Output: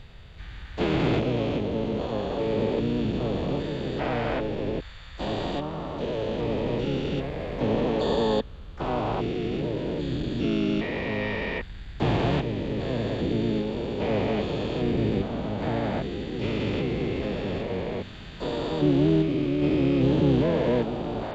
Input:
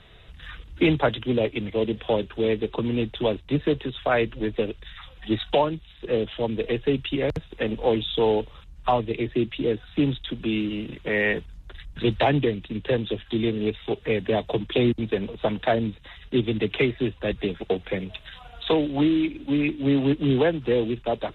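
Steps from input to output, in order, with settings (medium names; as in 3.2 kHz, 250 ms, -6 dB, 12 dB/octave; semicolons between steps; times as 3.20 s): spectrogram pixelated in time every 400 ms; harmony voices -12 st -8 dB, +4 st -4 dB, +12 st -14 dB; tone controls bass +2 dB, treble -5 dB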